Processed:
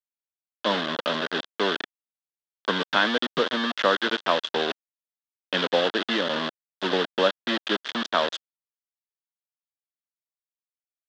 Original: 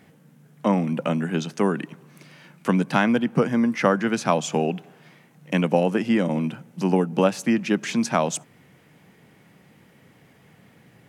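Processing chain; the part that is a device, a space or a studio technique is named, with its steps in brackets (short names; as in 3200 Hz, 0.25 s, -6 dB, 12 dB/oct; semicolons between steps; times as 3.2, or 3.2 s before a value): hand-held game console (bit-crush 4-bit; speaker cabinet 410–4300 Hz, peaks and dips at 790 Hz -6 dB, 1600 Hz +4 dB, 2300 Hz -8 dB, 3400 Hz +10 dB)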